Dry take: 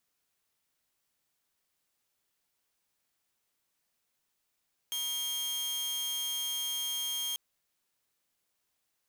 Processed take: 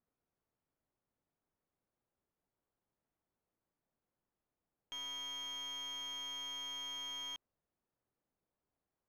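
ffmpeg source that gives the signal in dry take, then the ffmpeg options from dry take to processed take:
-f lavfi -i "aevalsrc='0.0335*(2*mod(3220*t,1)-1)':duration=2.44:sample_rate=44100"
-filter_complex "[0:a]asplit=2[link_01][link_02];[link_02]asoftclip=type=tanh:threshold=-39dB,volume=-9.5dB[link_03];[link_01][link_03]amix=inputs=2:normalize=0,adynamicsmooth=sensitivity=4:basefreq=900"

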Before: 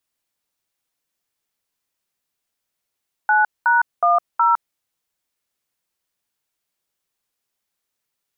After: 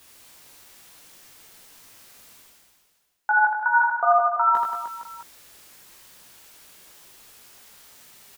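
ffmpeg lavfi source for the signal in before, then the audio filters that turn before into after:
-f lavfi -i "aevalsrc='0.178*clip(min(mod(t,0.368),0.159-mod(t,0.368))/0.002,0,1)*(eq(floor(t/0.368),0)*(sin(2*PI*852*mod(t,0.368))+sin(2*PI*1477*mod(t,0.368)))+eq(floor(t/0.368),1)*(sin(2*PI*941*mod(t,0.368))+sin(2*PI*1477*mod(t,0.368)))+eq(floor(t/0.368),2)*(sin(2*PI*697*mod(t,0.368))+sin(2*PI*1209*mod(t,0.368)))+eq(floor(t/0.368),3)*(sin(2*PI*941*mod(t,0.368))+sin(2*PI*1336*mod(t,0.368))))':duration=1.472:sample_rate=44100"
-af "areverse,acompressor=mode=upward:threshold=-24dB:ratio=2.5,areverse,flanger=delay=16.5:depth=2.1:speed=1.9,aecho=1:1:80|180|305|461.2|656.6:0.631|0.398|0.251|0.158|0.1"

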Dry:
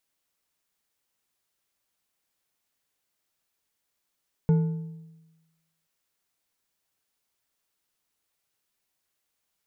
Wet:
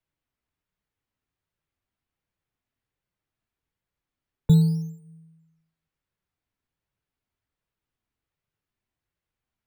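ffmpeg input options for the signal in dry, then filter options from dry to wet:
-f lavfi -i "aevalsrc='0.168*pow(10,-3*t/1.14)*sin(2*PI*162*t)+0.0447*pow(10,-3*t/0.841)*sin(2*PI*446.6*t)+0.0119*pow(10,-3*t/0.687)*sin(2*PI*875.4*t)+0.00316*pow(10,-3*t/0.591)*sin(2*PI*1447.1*t)+0.000841*pow(10,-3*t/0.524)*sin(2*PI*2161.1*t)':duration=1.38:sample_rate=44100"
-filter_complex "[0:a]bass=frequency=250:gain=13,treble=frequency=4000:gain=-14,acrossover=split=190|200|650[link_01][link_02][link_03][link_04];[link_01]acrusher=samples=9:mix=1:aa=0.000001:lfo=1:lforange=9:lforate=0.53[link_05];[link_05][link_02][link_03][link_04]amix=inputs=4:normalize=0,flanger=delay=1.8:depth=1.3:regen=-64:speed=1.3:shape=triangular"

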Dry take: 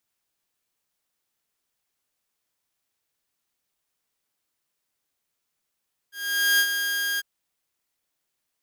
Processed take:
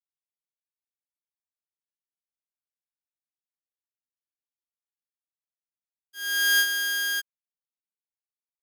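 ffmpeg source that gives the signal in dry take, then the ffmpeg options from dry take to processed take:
-f lavfi -i "aevalsrc='0.2*(2*mod(1620*t,1)-1)':duration=1.099:sample_rate=44100,afade=type=in:duration=0.472,afade=type=out:start_time=0.472:duration=0.066:silence=0.422,afade=type=out:start_time=1.07:duration=0.029"
-af "aeval=exprs='sgn(val(0))*max(abs(val(0))-0.00376,0)':channel_layout=same"

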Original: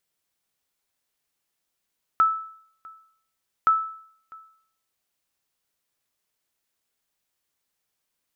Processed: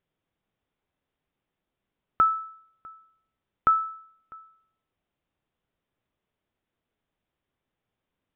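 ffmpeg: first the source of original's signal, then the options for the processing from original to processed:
-f lavfi -i "aevalsrc='0.251*(sin(2*PI*1310*mod(t,1.47))*exp(-6.91*mod(t,1.47)/0.6)+0.0562*sin(2*PI*1310*max(mod(t,1.47)-0.65,0))*exp(-6.91*max(mod(t,1.47)-0.65,0)/0.6))':duration=2.94:sample_rate=44100"
-af "tiltshelf=frequency=1100:gain=4.5,aresample=8000,aresample=44100,lowshelf=frequency=360:gain=6"

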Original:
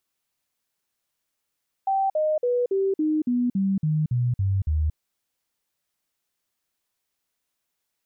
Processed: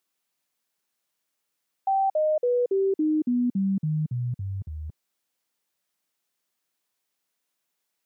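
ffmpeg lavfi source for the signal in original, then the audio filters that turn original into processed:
-f lavfi -i "aevalsrc='0.106*clip(min(mod(t,0.28),0.23-mod(t,0.28))/0.005,0,1)*sin(2*PI*777*pow(2,-floor(t/0.28)/3)*mod(t,0.28))':duration=3.08:sample_rate=44100"
-af "highpass=150"

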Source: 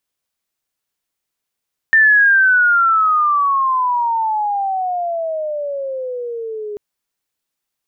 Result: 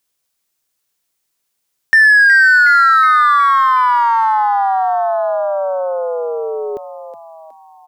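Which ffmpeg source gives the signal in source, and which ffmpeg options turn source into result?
-f lavfi -i "aevalsrc='pow(10,(-7-16.5*t/4.84)/20)*sin(2*PI*1800*4.84/log(410/1800)*(exp(log(410/1800)*t/4.84)-1))':duration=4.84:sample_rate=44100"
-filter_complex "[0:a]bass=frequency=250:gain=-1,treble=frequency=4000:gain=5,asplit=2[link_01][link_02];[link_02]asoftclip=type=hard:threshold=-15.5dB,volume=-4dB[link_03];[link_01][link_03]amix=inputs=2:normalize=0,asplit=6[link_04][link_05][link_06][link_07][link_08][link_09];[link_05]adelay=367,afreqshift=110,volume=-11dB[link_10];[link_06]adelay=734,afreqshift=220,volume=-16.8dB[link_11];[link_07]adelay=1101,afreqshift=330,volume=-22.7dB[link_12];[link_08]adelay=1468,afreqshift=440,volume=-28.5dB[link_13];[link_09]adelay=1835,afreqshift=550,volume=-34.4dB[link_14];[link_04][link_10][link_11][link_12][link_13][link_14]amix=inputs=6:normalize=0"

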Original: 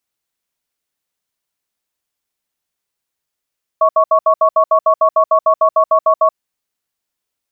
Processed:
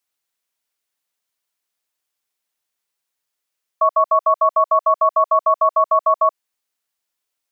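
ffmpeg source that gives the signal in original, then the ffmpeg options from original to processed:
-f lavfi -i "aevalsrc='0.299*(sin(2*PI*639*t)+sin(2*PI*1110*t))*clip(min(mod(t,0.15),0.08-mod(t,0.15))/0.005,0,1)':duration=2.55:sample_rate=44100"
-filter_complex "[0:a]lowshelf=frequency=330:gain=-10,acrossover=split=630|690|700[link_01][link_02][link_03][link_04];[link_01]alimiter=level_in=2.5dB:limit=-24dB:level=0:latency=1,volume=-2.5dB[link_05];[link_05][link_02][link_03][link_04]amix=inputs=4:normalize=0"

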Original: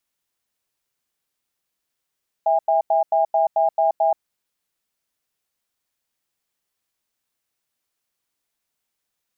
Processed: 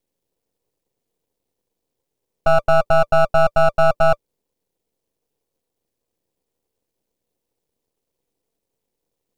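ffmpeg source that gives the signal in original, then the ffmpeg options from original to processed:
-f lavfi -i "aevalsrc='0.133*(sin(2*PI*655*t)+sin(2*PI*810*t))*clip(min(mod(t,0.22),0.13-mod(t,0.22))/0.005,0,1)':duration=1.75:sample_rate=44100"
-af "lowshelf=frequency=740:width_type=q:width=3:gain=13.5,bandreject=frequency=590:width=12,aeval=exprs='max(val(0),0)':channel_layout=same"

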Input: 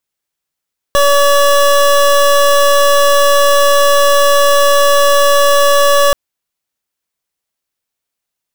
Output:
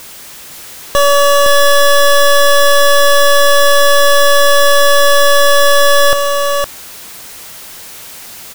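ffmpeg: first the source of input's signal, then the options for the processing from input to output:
-f lavfi -i "aevalsrc='0.376*(2*lt(mod(569*t,1),0.25)-1)':duration=5.18:sample_rate=44100"
-filter_complex "[0:a]aeval=exprs='val(0)+0.5*0.0501*sgn(val(0))':channel_layout=same,asplit=2[link_01][link_02];[link_02]aecho=0:1:512:0.562[link_03];[link_01][link_03]amix=inputs=2:normalize=0"

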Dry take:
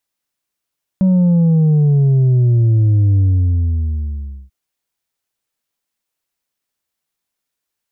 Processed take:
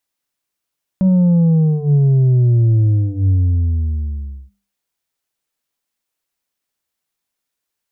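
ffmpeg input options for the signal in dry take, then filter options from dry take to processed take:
-f lavfi -i "aevalsrc='0.335*clip((3.49-t)/1.31,0,1)*tanh(1.5*sin(2*PI*190*3.49/log(65/190)*(exp(log(65/190)*t/3.49)-1)))/tanh(1.5)':duration=3.49:sample_rate=44100"
-af "bandreject=frequency=50:width_type=h:width=6,bandreject=frequency=100:width_type=h:width=6,bandreject=frequency=150:width_type=h:width=6,bandreject=frequency=200:width_type=h:width=6"

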